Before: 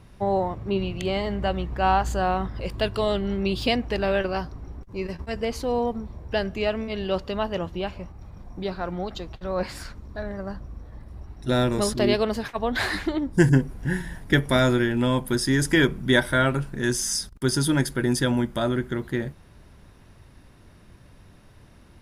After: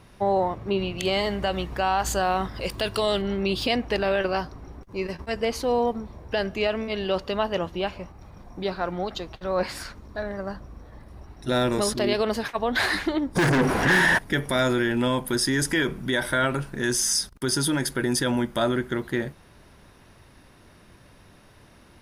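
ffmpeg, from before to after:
ffmpeg -i in.wav -filter_complex "[0:a]asettb=1/sr,asplit=3[link_01][link_02][link_03];[link_01]atrim=end=0.984[link_04];[link_02]atrim=start=0.98:end=3.22,asetpts=PTS-STARTPTS,afade=type=in:duration=0.004:curve=qsin,afade=type=out:start_time=2.236:duration=0.004:curve=qsin,highshelf=frequency=3800:gain=9[link_05];[link_03]atrim=start=3.216[link_06];[link_04][link_05]acrossfade=duration=0.004:curve1=hsin:curve2=qsin[link_07];[link_07][link_06]acrossfade=duration=0.004:curve1=qsin:curve2=hsin,asplit=3[link_08][link_09][link_10];[link_08]afade=type=out:start_time=13.35:duration=0.02[link_11];[link_09]asplit=2[link_12][link_13];[link_13]highpass=frequency=720:poles=1,volume=37dB,asoftclip=type=tanh:threshold=-4dB[link_14];[link_12][link_14]amix=inputs=2:normalize=0,lowpass=frequency=2200:poles=1,volume=-6dB,afade=type=in:start_time=13.35:duration=0.02,afade=type=out:start_time=14.17:duration=0.02[link_15];[link_10]afade=type=in:start_time=14.17:duration=0.02[link_16];[link_11][link_15][link_16]amix=inputs=3:normalize=0,alimiter=limit=-16dB:level=0:latency=1:release=36,lowshelf=frequency=200:gain=-9,bandreject=frequency=7400:width=19,volume=3.5dB" out.wav

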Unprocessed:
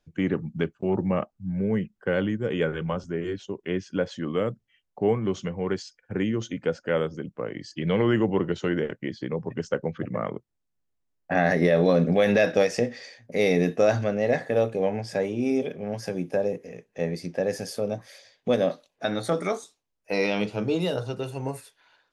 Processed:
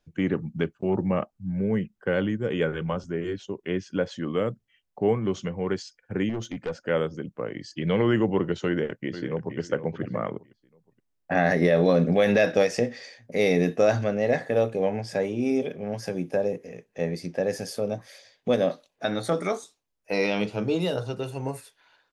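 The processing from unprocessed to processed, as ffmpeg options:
ffmpeg -i in.wav -filter_complex "[0:a]asettb=1/sr,asplit=3[link_01][link_02][link_03];[link_01]atrim=end=6.294[link_04];[link_02]atrim=start=6.29:end=6.79,asetpts=PTS-STARTPTS,afade=type=in:duration=0.004:curve=qsin,afade=type=out:start_time=0.496:duration=0.004:curve=qsin,aeval=exprs='(tanh(17.8*val(0)+0.2)-tanh(0.2))/17.8':channel_layout=same[link_05];[link_03]atrim=start=6.786[link_06];[link_04][link_05]acrossfade=duration=0.004:curve1=hsin:curve2=qsin[link_07];[link_07][link_06]acrossfade=duration=0.004:curve1=qsin:curve2=hsin,asplit=2[link_08][link_09];[link_09]afade=type=in:start_time=8.66:duration=0.01,afade=type=out:start_time=9.58:duration=0.01,aecho=0:1:470|940|1410:0.281838|0.0845515|0.0253654[link_10];[link_08][link_10]amix=inputs=2:normalize=0" out.wav

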